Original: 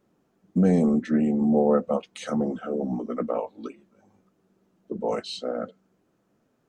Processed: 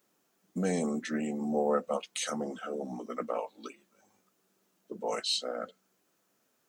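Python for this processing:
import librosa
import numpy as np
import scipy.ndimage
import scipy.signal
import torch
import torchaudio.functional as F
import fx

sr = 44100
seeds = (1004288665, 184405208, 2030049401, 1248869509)

y = fx.tilt_eq(x, sr, slope=4.0)
y = F.gain(torch.from_numpy(y), -3.0).numpy()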